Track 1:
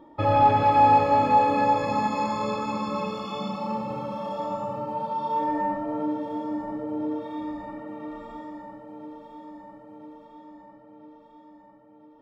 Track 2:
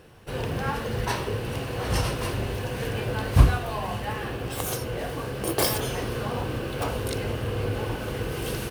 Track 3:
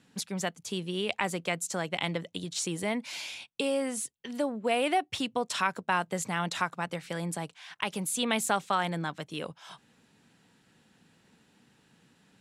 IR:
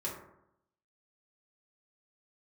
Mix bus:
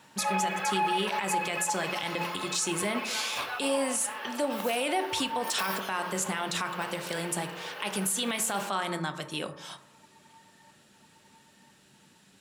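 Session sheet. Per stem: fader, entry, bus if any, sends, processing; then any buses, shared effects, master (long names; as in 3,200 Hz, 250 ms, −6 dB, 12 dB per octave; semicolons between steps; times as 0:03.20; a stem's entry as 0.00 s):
−7.5 dB, 0.00 s, no send, reverb reduction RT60 1.7 s; high-pass filter 670 Hz 24 dB per octave; parametric band 2,200 Hz +15 dB 1.2 octaves
−3.0 dB, 0.00 s, no send, high-pass filter 890 Hz 12 dB per octave; parametric band 8,400 Hz −12 dB 0.86 octaves
−1.5 dB, 0.00 s, send −6.5 dB, high-shelf EQ 3,400 Hz +9.5 dB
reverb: on, RT60 0.80 s, pre-delay 3 ms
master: mains-hum notches 60/120/180 Hz; brickwall limiter −19 dBFS, peak gain reduction 10.5 dB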